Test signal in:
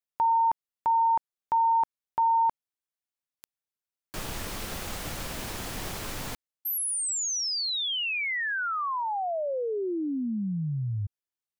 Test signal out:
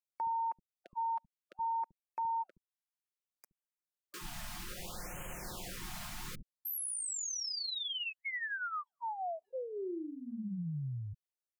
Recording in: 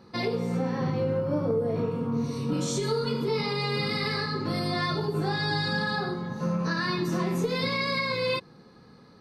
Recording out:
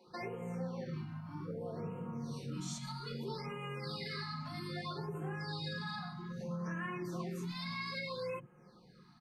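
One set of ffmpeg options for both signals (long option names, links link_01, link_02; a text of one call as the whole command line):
ffmpeg -i in.wav -filter_complex "[0:a]aecho=1:1:5.6:0.51,acompressor=threshold=-27dB:ratio=3:attack=0.89:release=527:knee=1:detection=rms,acrossover=split=260[link_01][link_02];[link_01]adelay=70[link_03];[link_03][link_02]amix=inputs=2:normalize=0,afftfilt=real='re*(1-between(b*sr/1024,400*pow(4600/400,0.5+0.5*sin(2*PI*0.62*pts/sr))/1.41,400*pow(4600/400,0.5+0.5*sin(2*PI*0.62*pts/sr))*1.41))':imag='im*(1-between(b*sr/1024,400*pow(4600/400,0.5+0.5*sin(2*PI*0.62*pts/sr))/1.41,400*pow(4600/400,0.5+0.5*sin(2*PI*0.62*pts/sr))*1.41))':win_size=1024:overlap=0.75,volume=-7.5dB" out.wav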